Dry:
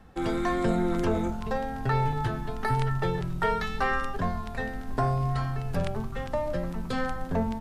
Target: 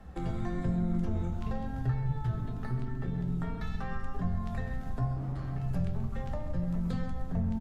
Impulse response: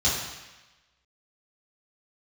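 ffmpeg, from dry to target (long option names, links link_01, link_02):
-filter_complex "[0:a]acrossover=split=230[link_01][link_02];[link_02]acompressor=threshold=-43dB:ratio=2.5[link_03];[link_01][link_03]amix=inputs=2:normalize=0,lowshelf=frequency=130:gain=6.5,acompressor=threshold=-29dB:ratio=2.5,asettb=1/sr,asplit=3[link_04][link_05][link_06];[link_04]atrim=end=1.114[link_07];[link_05]atrim=start=1.11:end=1.64,asetpts=PTS-STARTPTS,afade=type=in:duration=0.004:curve=qsin,afade=type=out:start_time=0.526:duration=0.004:curve=qsin,equalizer=frequency=3000:width=0.95:gain=4[link_08];[link_06]atrim=start=1.636[link_09];[link_07][link_08]acrossfade=duration=0.004:curve1=hsin:curve2=qsin[link_10];[link_10][link_09]acrossfade=duration=0.004:curve1=qsin:curve2=hsin,asettb=1/sr,asplit=3[link_11][link_12][link_13];[link_11]atrim=end=2.364[link_14];[link_12]atrim=start=2.36:end=3.61,asetpts=PTS-STARTPTS,afade=type=in:duration=0.004:curve=qsin,afade=type=out:start_time=1.246:duration=0.004:curve=qsin,tremolo=f=250:d=0.519[link_15];[link_13]atrim=start=3.606[link_16];[link_14][link_15]acrossfade=duration=0.004:curve1=hsin:curve2=qsin[link_17];[link_17][link_16]acrossfade=duration=0.004:curve1=qsin:curve2=hsin,asettb=1/sr,asplit=3[link_18][link_19][link_20];[link_18]atrim=end=5.164[link_21];[link_19]atrim=start=5.16:end=5.62,asetpts=PTS-STARTPTS,afade=type=in:duration=0.004:curve=qsin,afade=type=out:start_time=0.456:duration=0.004:curve=qsin,asoftclip=type=hard:threshold=-30.5dB[link_22];[link_20]atrim=start=5.616[link_23];[link_21][link_22]acrossfade=duration=0.004:curve1=hsin:curve2=qsin[link_24];[link_24][link_23]acrossfade=duration=0.004:curve1=qsin:curve2=hsin,asplit=2[link_25][link_26];[link_26]adelay=132,lowpass=frequency=3100:poles=1,volume=-12dB,asplit=2[link_27][link_28];[link_28]adelay=132,lowpass=frequency=3100:poles=1,volume=0.52,asplit=2[link_29][link_30];[link_30]adelay=132,lowpass=frequency=3100:poles=1,volume=0.52,asplit=2[link_31][link_32];[link_32]adelay=132,lowpass=frequency=3100:poles=1,volume=0.52,asplit=2[link_33][link_34];[link_34]adelay=132,lowpass=frequency=3100:poles=1,volume=0.52[link_35];[link_25][link_27][link_29][link_31][link_33][link_35]amix=inputs=6:normalize=0,asplit=2[link_36][link_37];[1:a]atrim=start_sample=2205,afade=type=out:start_time=0.25:duration=0.01,atrim=end_sample=11466[link_38];[link_37][link_38]afir=irnorm=-1:irlink=0,volume=-17.5dB[link_39];[link_36][link_39]amix=inputs=2:normalize=0,volume=-1.5dB" -ar 48000 -c:a libopus -b:a 48k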